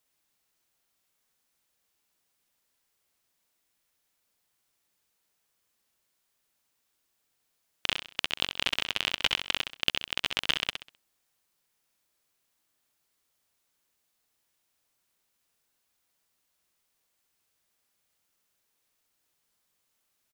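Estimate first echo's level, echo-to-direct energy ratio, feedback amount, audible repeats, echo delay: -7.0 dB, -6.5 dB, 34%, 3, 65 ms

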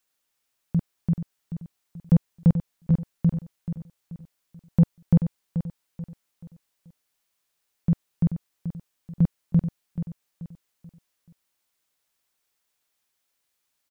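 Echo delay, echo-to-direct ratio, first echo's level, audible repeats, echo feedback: 433 ms, -9.5 dB, -10.0 dB, 3, 38%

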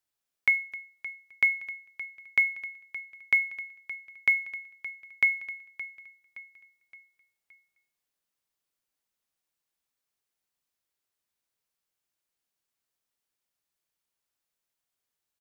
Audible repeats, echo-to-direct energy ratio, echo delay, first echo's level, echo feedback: 3, -14.5 dB, 569 ms, -15.5 dB, 46%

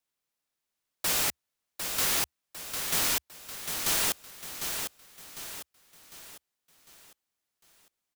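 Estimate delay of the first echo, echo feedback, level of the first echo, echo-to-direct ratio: 752 ms, 43%, -6.5 dB, -5.5 dB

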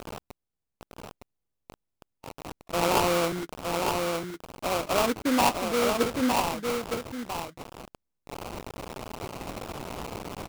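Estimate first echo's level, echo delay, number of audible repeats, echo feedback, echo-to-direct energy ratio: -4.0 dB, 911 ms, 1, no regular repeats, -4.0 dB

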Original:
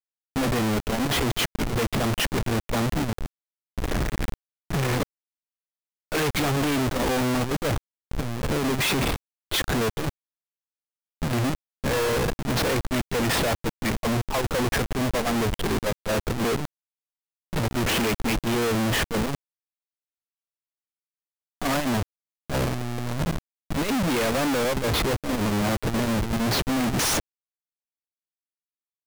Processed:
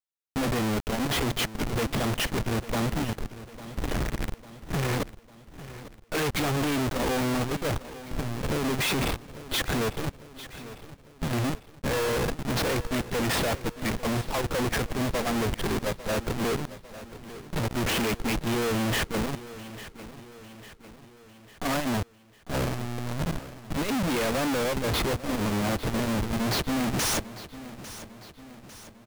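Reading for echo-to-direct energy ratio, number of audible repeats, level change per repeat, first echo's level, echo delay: -14.0 dB, 4, -5.5 dB, -15.5 dB, 850 ms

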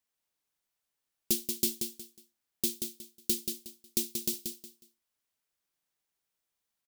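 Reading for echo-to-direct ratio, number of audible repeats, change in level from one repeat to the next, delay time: -5.5 dB, 3, -11.5 dB, 182 ms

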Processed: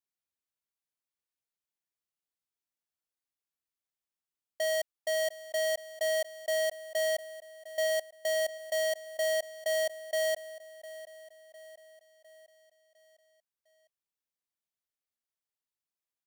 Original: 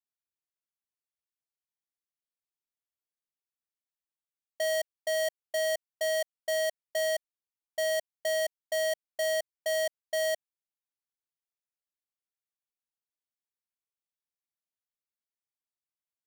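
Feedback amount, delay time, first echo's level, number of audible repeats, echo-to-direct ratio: 52%, 705 ms, -17.0 dB, 4, -15.5 dB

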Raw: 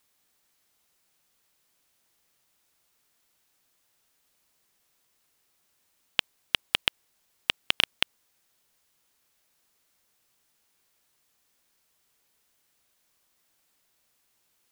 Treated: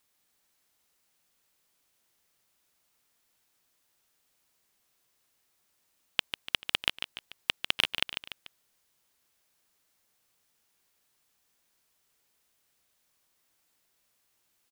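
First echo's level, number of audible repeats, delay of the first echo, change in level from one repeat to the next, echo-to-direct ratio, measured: -8.5 dB, 3, 146 ms, -6.5 dB, -7.5 dB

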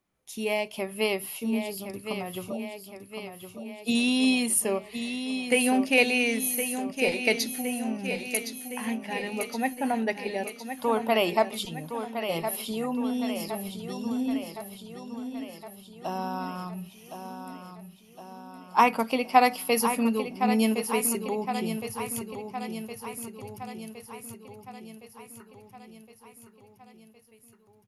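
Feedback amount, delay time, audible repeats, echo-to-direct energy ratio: 59%, 1064 ms, 6, -6.5 dB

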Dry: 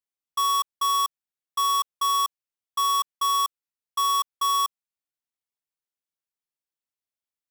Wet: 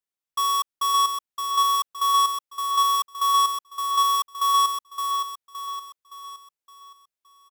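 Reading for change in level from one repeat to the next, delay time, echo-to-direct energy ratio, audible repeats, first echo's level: -7.0 dB, 567 ms, -4.5 dB, 5, -5.5 dB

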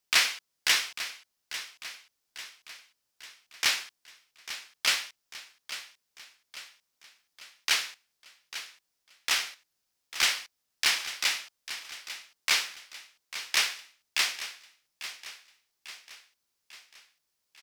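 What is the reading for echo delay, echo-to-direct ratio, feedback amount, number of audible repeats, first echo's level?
846 ms, -11.5 dB, 52%, 4, -13.0 dB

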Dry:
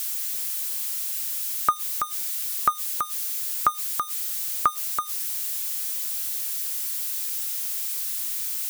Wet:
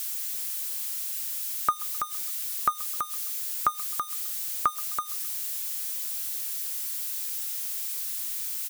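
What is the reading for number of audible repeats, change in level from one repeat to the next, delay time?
2, -6.5 dB, 130 ms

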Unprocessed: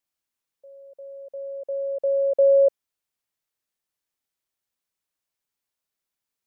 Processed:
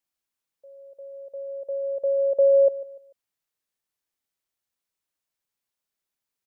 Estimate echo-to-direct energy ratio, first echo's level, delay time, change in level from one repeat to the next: -17.0 dB, -17.5 dB, 147 ms, -9.5 dB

